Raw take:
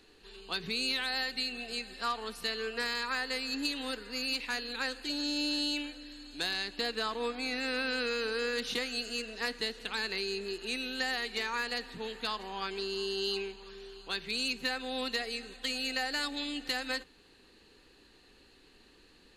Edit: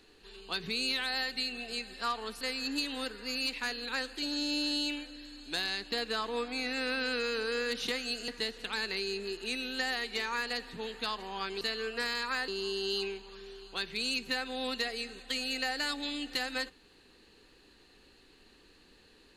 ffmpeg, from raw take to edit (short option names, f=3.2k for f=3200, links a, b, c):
-filter_complex "[0:a]asplit=5[a][b][c][d][e];[a]atrim=end=2.412[f];[b]atrim=start=3.278:end=9.152[g];[c]atrim=start=9.488:end=12.822[h];[d]atrim=start=2.408:end=3.282[i];[e]atrim=start=12.818[j];[f][g]acrossfade=d=0.004:c1=hsin:c2=hsin[k];[k][h]acrossfade=d=0.004:c1=hsin:c2=hsin[l];[l][i]acrossfade=d=0.004:c1=hsin:c2=hsin[m];[m][j]acrossfade=d=0.004:c1=hsin:c2=hsin"